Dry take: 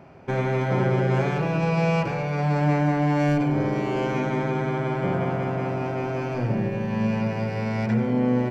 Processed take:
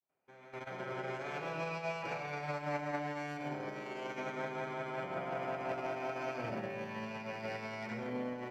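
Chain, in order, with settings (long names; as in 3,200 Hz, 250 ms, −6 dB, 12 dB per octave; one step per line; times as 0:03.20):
fade in at the beginning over 1.57 s
high-pass filter 710 Hz 6 dB per octave
output level in coarse steps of 13 dB
brickwall limiter −38.5 dBFS, peak gain reduction 11 dB
on a send at −6 dB: convolution reverb RT60 0.35 s, pre-delay 75 ms
on the sum: expander for the loud parts 2.5 to 1, over −54 dBFS
level +9.5 dB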